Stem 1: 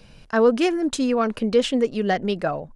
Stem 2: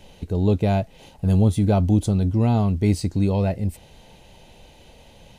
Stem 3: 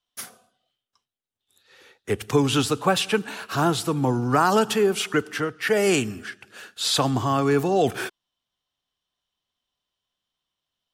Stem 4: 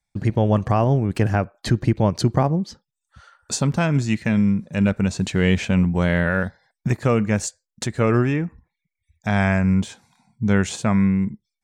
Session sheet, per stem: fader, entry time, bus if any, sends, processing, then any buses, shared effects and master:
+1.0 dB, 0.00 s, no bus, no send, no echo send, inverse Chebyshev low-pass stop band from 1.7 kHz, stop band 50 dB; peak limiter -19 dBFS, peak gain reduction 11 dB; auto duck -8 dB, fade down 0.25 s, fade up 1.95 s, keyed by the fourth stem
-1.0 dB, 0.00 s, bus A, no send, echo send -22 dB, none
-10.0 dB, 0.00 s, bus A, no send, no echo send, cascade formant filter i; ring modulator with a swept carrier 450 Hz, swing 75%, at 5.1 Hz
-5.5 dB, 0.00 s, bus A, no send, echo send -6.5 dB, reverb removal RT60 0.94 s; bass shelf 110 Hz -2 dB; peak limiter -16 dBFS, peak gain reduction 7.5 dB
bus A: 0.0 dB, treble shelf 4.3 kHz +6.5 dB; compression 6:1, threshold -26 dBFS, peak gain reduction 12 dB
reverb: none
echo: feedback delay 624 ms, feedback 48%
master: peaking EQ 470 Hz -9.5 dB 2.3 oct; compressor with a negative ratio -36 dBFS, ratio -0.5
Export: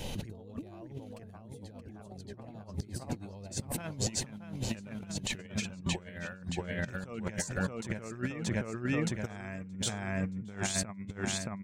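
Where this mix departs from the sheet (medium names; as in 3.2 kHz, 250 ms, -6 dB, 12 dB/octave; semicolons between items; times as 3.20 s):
stem 3 -10.0 dB -> -16.0 dB; stem 4: missing peak limiter -16 dBFS, peak gain reduction 7.5 dB; master: missing peaking EQ 470 Hz -9.5 dB 2.3 oct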